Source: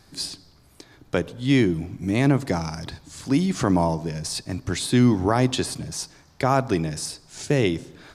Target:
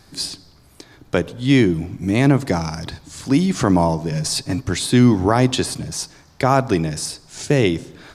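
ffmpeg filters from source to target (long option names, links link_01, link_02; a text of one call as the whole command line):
ffmpeg -i in.wav -filter_complex "[0:a]asettb=1/sr,asplit=3[link_01][link_02][link_03];[link_01]atrim=end=4.114[link_04];[link_02]atrim=start=4.11:end=4.62,asetpts=PTS-STARTPTS,afade=type=in:duration=0.004:curve=qsin,afade=type=out:start_time=0.506:duration=0.004:curve=qsin,aecho=1:1:7.2:0.89,atrim=end_sample=22491[link_05];[link_03]atrim=start=4.616[link_06];[link_04][link_05]acrossfade=duration=0.004:curve1=hsin:curve2=qsin[link_07];[link_07][link_06]acrossfade=duration=0.004:curve1=qsin:curve2=hsin,volume=4.5dB" out.wav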